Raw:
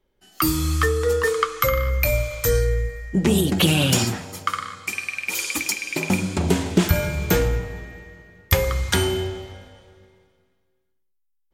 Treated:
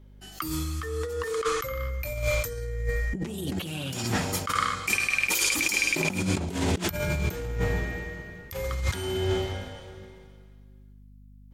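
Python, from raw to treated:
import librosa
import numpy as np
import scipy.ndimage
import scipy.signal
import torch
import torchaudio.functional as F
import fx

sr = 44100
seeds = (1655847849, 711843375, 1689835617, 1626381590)

y = fx.add_hum(x, sr, base_hz=50, snr_db=34)
y = fx.over_compress(y, sr, threshold_db=-29.0, ratio=-1.0)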